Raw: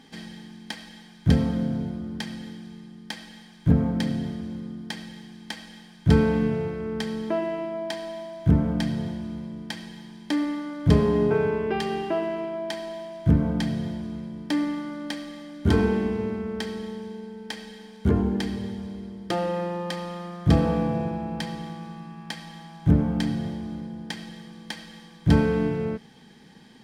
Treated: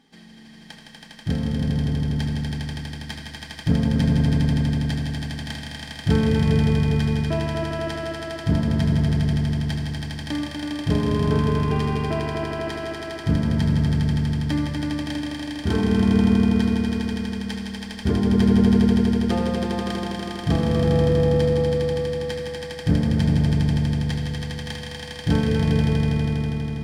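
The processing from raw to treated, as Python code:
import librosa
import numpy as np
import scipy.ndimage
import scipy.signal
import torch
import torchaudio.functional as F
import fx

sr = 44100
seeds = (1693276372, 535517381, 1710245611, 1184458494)

p1 = fx.rider(x, sr, range_db=4, speed_s=2.0)
p2 = p1 + fx.echo_swell(p1, sr, ms=81, loudest=5, wet_db=-3.5, dry=0)
y = p2 * librosa.db_to_amplitude(-4.0)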